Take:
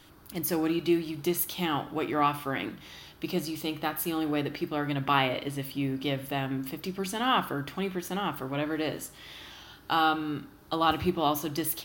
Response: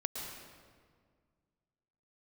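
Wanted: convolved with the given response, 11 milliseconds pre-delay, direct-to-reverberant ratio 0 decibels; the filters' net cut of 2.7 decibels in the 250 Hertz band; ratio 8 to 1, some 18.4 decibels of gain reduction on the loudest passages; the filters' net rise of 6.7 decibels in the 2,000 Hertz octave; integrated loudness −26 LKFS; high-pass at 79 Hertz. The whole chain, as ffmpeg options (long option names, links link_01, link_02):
-filter_complex "[0:a]highpass=79,equalizer=frequency=250:width_type=o:gain=-4,equalizer=frequency=2000:width_type=o:gain=9,acompressor=threshold=-37dB:ratio=8,asplit=2[link_01][link_02];[1:a]atrim=start_sample=2205,adelay=11[link_03];[link_02][link_03]afir=irnorm=-1:irlink=0,volume=-2dB[link_04];[link_01][link_04]amix=inputs=2:normalize=0,volume=12dB"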